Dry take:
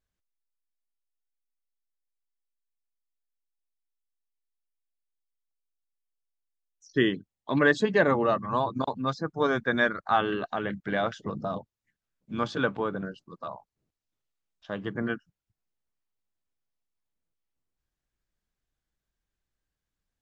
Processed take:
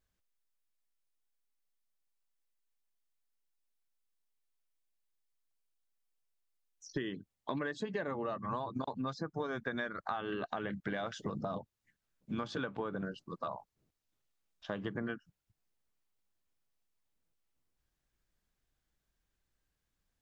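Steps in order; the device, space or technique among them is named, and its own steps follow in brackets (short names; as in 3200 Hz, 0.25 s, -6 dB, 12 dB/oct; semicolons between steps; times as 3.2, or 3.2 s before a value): 10.94–11.4 high shelf 4400 Hz +5.5 dB; serial compression, peaks first (compressor, threshold -30 dBFS, peak gain reduction 13.5 dB; compressor 2.5:1, threshold -39 dBFS, peak gain reduction 8.5 dB); gain +2.5 dB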